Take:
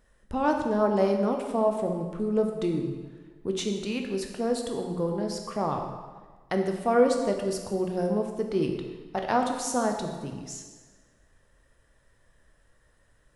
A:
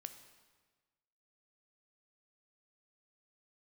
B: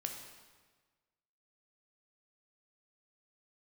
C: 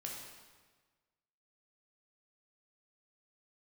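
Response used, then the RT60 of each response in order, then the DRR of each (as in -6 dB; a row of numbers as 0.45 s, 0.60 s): B; 1.4 s, 1.4 s, 1.4 s; 8.5 dB, 3.0 dB, -2.0 dB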